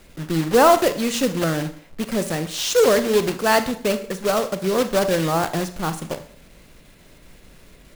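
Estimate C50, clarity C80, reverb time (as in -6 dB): 13.0 dB, 17.5 dB, 0.55 s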